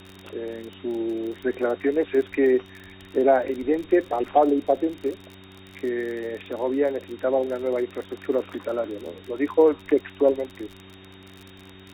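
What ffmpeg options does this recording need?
ffmpeg -i in.wav -af "adeclick=threshold=4,bandreject=frequency=95.1:width_type=h:width=4,bandreject=frequency=190.2:width_type=h:width=4,bandreject=frequency=285.3:width_type=h:width=4,bandreject=frequency=380.4:width_type=h:width=4,bandreject=frequency=3700:width=30,afwtdn=0.0056" out.wav

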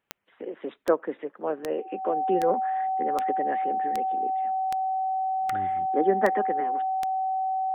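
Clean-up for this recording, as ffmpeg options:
ffmpeg -i in.wav -af "adeclick=threshold=4,bandreject=frequency=760:width=30" out.wav

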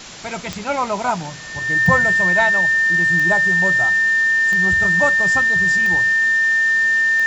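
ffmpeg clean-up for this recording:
ffmpeg -i in.wav -af "adeclick=threshold=4,bandreject=frequency=1800:width=30,afwtdn=0.022" out.wav

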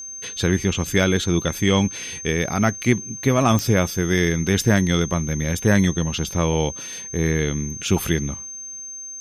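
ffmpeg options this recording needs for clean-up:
ffmpeg -i in.wav -af "adeclick=threshold=4,bandreject=frequency=6300:width=30" out.wav

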